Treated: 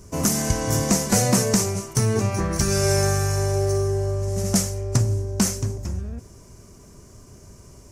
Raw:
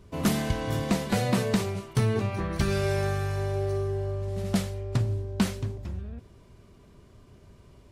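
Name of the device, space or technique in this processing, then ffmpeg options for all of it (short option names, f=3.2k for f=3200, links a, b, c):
over-bright horn tweeter: -af "highshelf=f=4.7k:t=q:w=3:g=9,alimiter=limit=-13.5dB:level=0:latency=1:release=324,volume=6.5dB"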